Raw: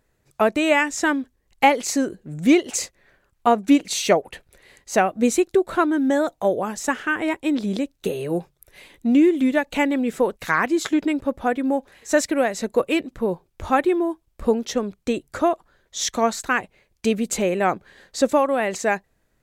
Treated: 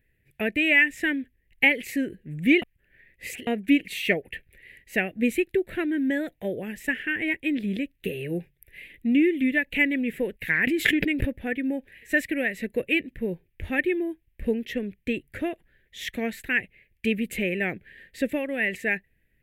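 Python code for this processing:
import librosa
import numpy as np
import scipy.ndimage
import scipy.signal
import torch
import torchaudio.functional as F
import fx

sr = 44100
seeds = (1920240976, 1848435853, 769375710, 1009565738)

y = fx.pre_swell(x, sr, db_per_s=36.0, at=(10.67, 11.29))
y = fx.edit(y, sr, fx.reverse_span(start_s=2.62, length_s=0.85), tone=tone)
y = fx.curve_eq(y, sr, hz=(100.0, 470.0, 1200.0, 1800.0, 2700.0, 4200.0, 6300.0, 12000.0), db=(0, -7, -28, 5, 3, -14, -22, -2))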